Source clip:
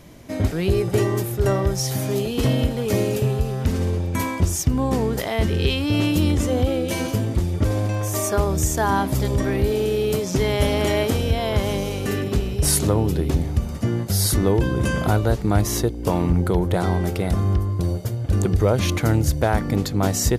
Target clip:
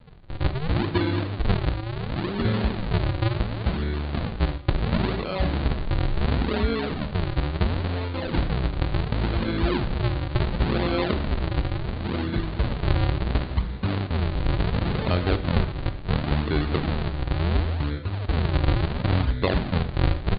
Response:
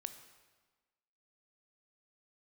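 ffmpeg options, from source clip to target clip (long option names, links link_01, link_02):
-filter_complex "[0:a]aresample=11025,acrusher=samples=24:mix=1:aa=0.000001:lfo=1:lforange=38.4:lforate=0.71,aresample=44100,asetrate=37084,aresample=44100,atempo=1.18921[link_01];[1:a]atrim=start_sample=2205,afade=type=out:start_time=0.17:duration=0.01,atrim=end_sample=7938[link_02];[link_01][link_02]afir=irnorm=-1:irlink=0"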